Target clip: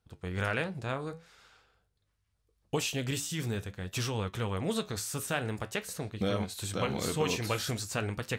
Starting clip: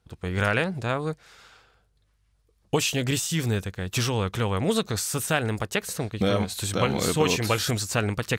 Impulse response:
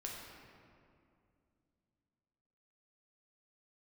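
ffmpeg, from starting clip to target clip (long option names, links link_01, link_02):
-af "flanger=delay=9.1:depth=7:regen=-68:speed=0.47:shape=triangular,volume=-3.5dB"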